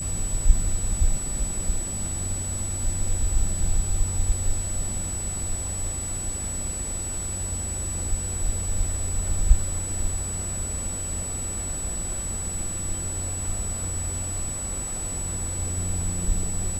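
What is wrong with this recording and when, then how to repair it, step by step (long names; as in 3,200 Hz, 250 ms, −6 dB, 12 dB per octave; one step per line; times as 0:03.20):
whistle 7,900 Hz −30 dBFS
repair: notch filter 7,900 Hz, Q 30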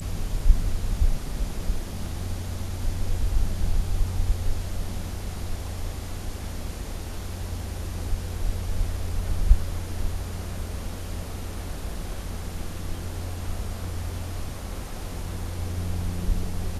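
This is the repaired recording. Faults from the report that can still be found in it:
none of them is left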